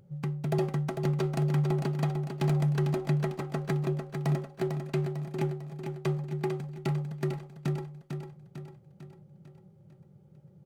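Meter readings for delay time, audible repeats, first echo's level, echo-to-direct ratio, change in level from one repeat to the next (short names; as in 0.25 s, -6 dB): 0.449 s, 5, -6.5 dB, -5.0 dB, -6.0 dB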